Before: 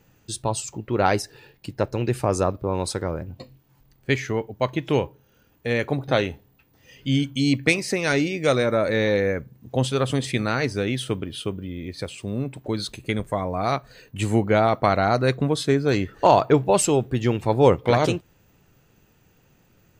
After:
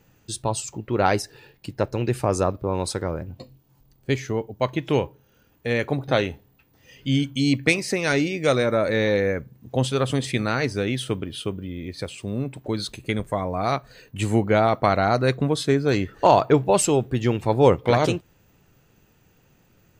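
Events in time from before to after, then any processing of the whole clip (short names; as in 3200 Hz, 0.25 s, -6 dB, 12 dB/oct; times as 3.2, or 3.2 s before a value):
3.4–4.6 bell 1900 Hz -6.5 dB 1.4 oct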